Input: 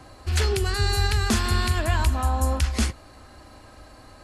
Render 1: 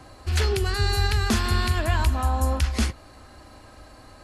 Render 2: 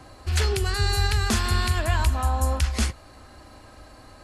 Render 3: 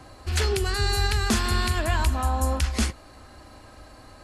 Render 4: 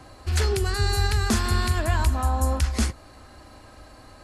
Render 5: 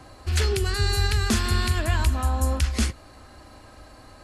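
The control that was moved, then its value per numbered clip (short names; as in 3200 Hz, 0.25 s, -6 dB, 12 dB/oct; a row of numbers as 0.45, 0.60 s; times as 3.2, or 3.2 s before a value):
dynamic EQ, frequency: 8100, 280, 100, 2900, 830 Hz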